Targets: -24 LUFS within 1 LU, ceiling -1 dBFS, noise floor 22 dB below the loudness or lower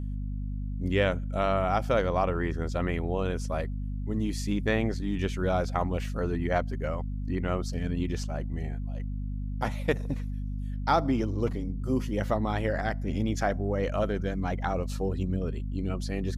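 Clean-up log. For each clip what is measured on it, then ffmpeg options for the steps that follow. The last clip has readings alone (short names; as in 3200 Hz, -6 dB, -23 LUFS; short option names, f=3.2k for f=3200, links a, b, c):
hum 50 Hz; harmonics up to 250 Hz; hum level -30 dBFS; loudness -30.0 LUFS; peak -11.0 dBFS; loudness target -24.0 LUFS
-> -af "bandreject=f=50:t=h:w=6,bandreject=f=100:t=h:w=6,bandreject=f=150:t=h:w=6,bandreject=f=200:t=h:w=6,bandreject=f=250:t=h:w=6"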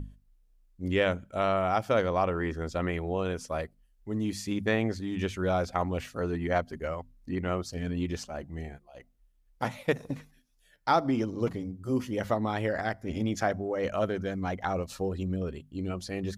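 hum none; loudness -31.0 LUFS; peak -12.0 dBFS; loudness target -24.0 LUFS
-> -af "volume=7dB"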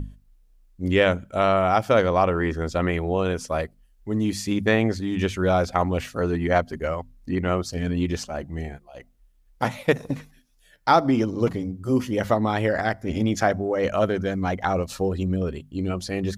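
loudness -24.0 LUFS; peak -5.0 dBFS; noise floor -58 dBFS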